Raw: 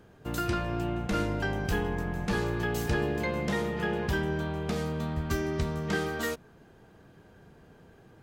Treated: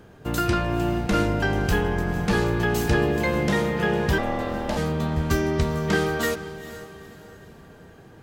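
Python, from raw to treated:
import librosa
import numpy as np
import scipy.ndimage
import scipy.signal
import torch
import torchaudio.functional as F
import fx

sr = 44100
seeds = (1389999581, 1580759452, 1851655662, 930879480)

y = fx.ring_mod(x, sr, carrier_hz=410.0, at=(4.18, 4.77))
y = fx.echo_diffused(y, sr, ms=471, feedback_pct=41, wet_db=-14.0)
y = F.gain(torch.from_numpy(y), 7.0).numpy()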